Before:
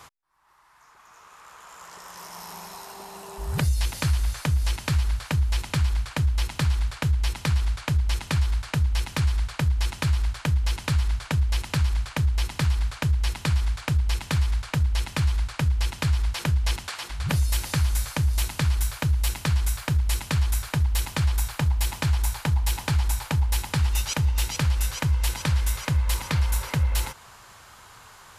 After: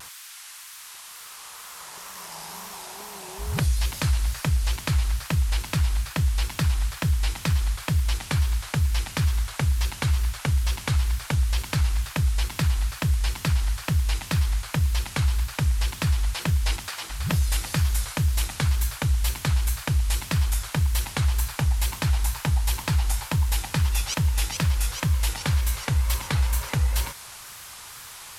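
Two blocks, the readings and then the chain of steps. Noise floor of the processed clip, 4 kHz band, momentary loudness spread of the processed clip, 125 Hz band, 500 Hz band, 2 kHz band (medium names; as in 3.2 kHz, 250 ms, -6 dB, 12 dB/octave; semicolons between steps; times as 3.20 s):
-42 dBFS, +1.0 dB, 13 LU, 0.0 dB, 0.0 dB, +0.5 dB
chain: band noise 1–13 kHz -43 dBFS; wow and flutter 120 cents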